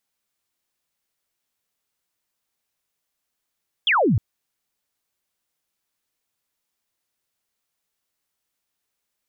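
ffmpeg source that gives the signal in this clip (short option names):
-f lavfi -i "aevalsrc='0.178*clip(t/0.002,0,1)*clip((0.31-t)/0.002,0,1)*sin(2*PI*3500*0.31/log(87/3500)*(exp(log(87/3500)*t/0.31)-1))':d=0.31:s=44100"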